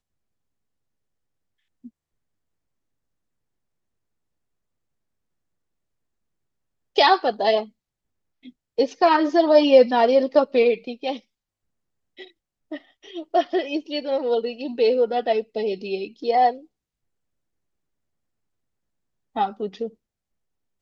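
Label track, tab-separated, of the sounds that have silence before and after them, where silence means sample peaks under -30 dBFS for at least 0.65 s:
6.970000	7.630000	sound
8.780000	11.170000	sound
12.210000	16.550000	sound
19.360000	19.880000	sound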